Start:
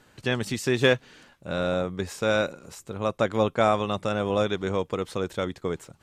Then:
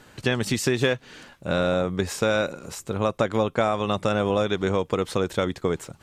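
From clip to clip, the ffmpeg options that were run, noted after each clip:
-af "acompressor=threshold=-26dB:ratio=5,volume=7dB"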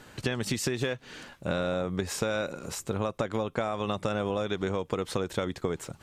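-af "acompressor=threshold=-26dB:ratio=6"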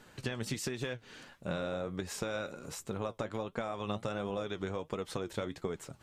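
-af "flanger=delay=4.2:depth=5.8:regen=66:speed=1.4:shape=triangular,volume=-2.5dB"

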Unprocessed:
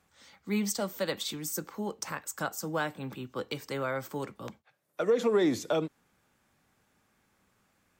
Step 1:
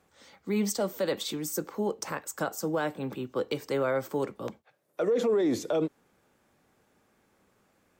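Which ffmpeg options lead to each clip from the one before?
-af "equalizer=f=440:w=0.8:g=8,alimiter=limit=-19.5dB:level=0:latency=1:release=18"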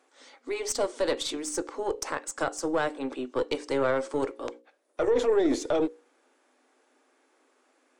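-af "bandreject=f=60:t=h:w=6,bandreject=f=120:t=h:w=6,bandreject=f=180:t=h:w=6,bandreject=f=240:t=h:w=6,bandreject=f=300:t=h:w=6,bandreject=f=360:t=h:w=6,bandreject=f=420:t=h:w=6,bandreject=f=480:t=h:w=6,bandreject=f=540:t=h:w=6,afftfilt=real='re*between(b*sr/4096,240,11000)':imag='im*between(b*sr/4096,240,11000)':win_size=4096:overlap=0.75,aeval=exprs='0.133*(cos(1*acos(clip(val(0)/0.133,-1,1)))-cos(1*PI/2))+0.0119*(cos(4*acos(clip(val(0)/0.133,-1,1)))-cos(4*PI/2))':c=same,volume=2.5dB"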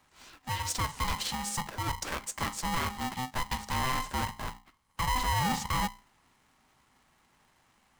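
-af "asoftclip=type=tanh:threshold=-25dB,aeval=exprs='val(0)*sgn(sin(2*PI*510*n/s))':c=same"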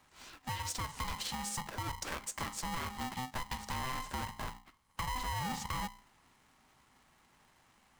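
-af "acompressor=threshold=-36dB:ratio=6"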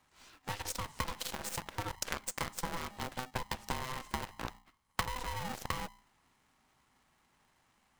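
-af "aeval=exprs='0.0447*(cos(1*acos(clip(val(0)/0.0447,-1,1)))-cos(1*PI/2))+0.0158*(cos(3*acos(clip(val(0)/0.0447,-1,1)))-cos(3*PI/2))+0.000316*(cos(5*acos(clip(val(0)/0.0447,-1,1)))-cos(5*PI/2))+0.000891*(cos(6*acos(clip(val(0)/0.0447,-1,1)))-cos(6*PI/2))+0.000891*(cos(7*acos(clip(val(0)/0.0447,-1,1)))-cos(7*PI/2))':c=same,volume=11dB"

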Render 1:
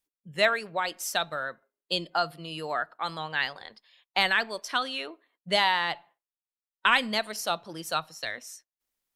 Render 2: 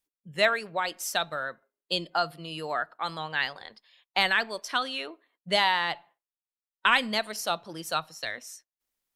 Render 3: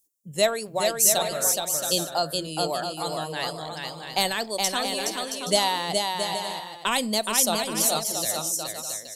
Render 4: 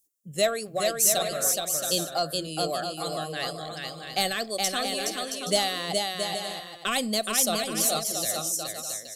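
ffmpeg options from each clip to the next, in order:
-af anull
-filter_complex "[0:a]firequalizer=gain_entry='entry(550,0);entry(1500,-14);entry(6800,12)':delay=0.05:min_phase=1,asplit=2[a][b];[b]aecho=0:1:420|672|823.2|913.9|968.4:0.631|0.398|0.251|0.158|0.1[c];[a][c]amix=inputs=2:normalize=0,volume=5dB"
-filter_complex "[0:a]asplit=2[a][b];[b]asoftclip=type=hard:threshold=-20dB,volume=-8.5dB[c];[a][c]amix=inputs=2:normalize=0,asuperstop=centerf=930:order=12:qfactor=4.7,volume=-4dB"

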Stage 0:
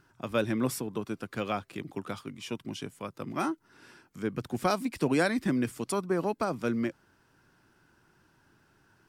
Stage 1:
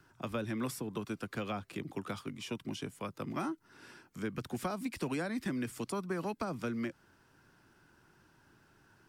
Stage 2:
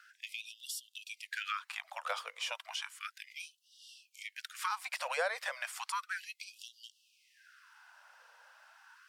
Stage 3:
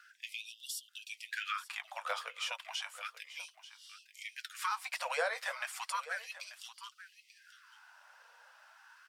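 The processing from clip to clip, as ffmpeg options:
-filter_complex "[0:a]acrossover=split=310|1300[a][b][c];[c]alimiter=level_in=7dB:limit=-24dB:level=0:latency=1:release=131,volume=-7dB[d];[a][b][d]amix=inputs=3:normalize=0,acrossover=split=250|1100[e][f][g];[e]acompressor=threshold=-39dB:ratio=4[h];[f]acompressor=threshold=-40dB:ratio=4[i];[g]acompressor=threshold=-41dB:ratio=4[j];[h][i][j]amix=inputs=3:normalize=0"
-filter_complex "[0:a]asplit=2[a][b];[b]highpass=f=720:p=1,volume=10dB,asoftclip=type=tanh:threshold=-23dB[c];[a][c]amix=inputs=2:normalize=0,lowpass=f=4.9k:p=1,volume=-6dB,equalizer=f=290:w=2.3:g=11.5,afftfilt=real='re*gte(b*sr/1024,460*pow(2800/460,0.5+0.5*sin(2*PI*0.33*pts/sr)))':imag='im*gte(b*sr/1024,460*pow(2800/460,0.5+0.5*sin(2*PI*0.33*pts/sr)))':win_size=1024:overlap=0.75,volume=3dB"
-af "flanger=delay=4.1:depth=5.4:regen=-47:speed=1.2:shape=sinusoidal,aecho=1:1:887:0.178,volume=4dB"

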